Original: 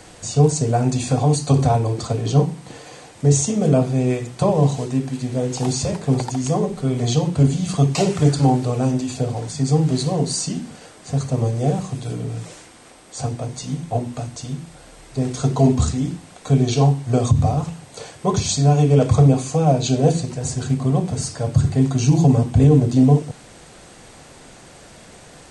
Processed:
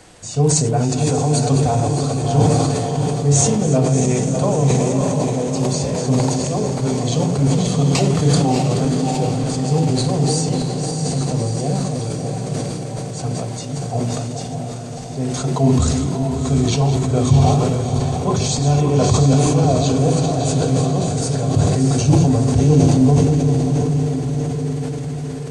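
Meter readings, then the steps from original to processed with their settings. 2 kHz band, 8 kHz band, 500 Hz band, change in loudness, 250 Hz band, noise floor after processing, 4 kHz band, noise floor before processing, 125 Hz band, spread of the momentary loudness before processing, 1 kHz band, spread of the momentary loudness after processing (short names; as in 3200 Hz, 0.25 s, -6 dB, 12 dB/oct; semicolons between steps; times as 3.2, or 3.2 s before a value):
+3.5 dB, +4.5 dB, +2.5 dB, +1.5 dB, +2.5 dB, -27 dBFS, +3.5 dB, -44 dBFS, +2.0 dB, 14 LU, +2.5 dB, 10 LU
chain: regenerating reverse delay 0.295 s, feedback 69%, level -8 dB; diffused feedback echo 0.676 s, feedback 61%, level -5 dB; sustainer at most 21 dB/s; gain -2.5 dB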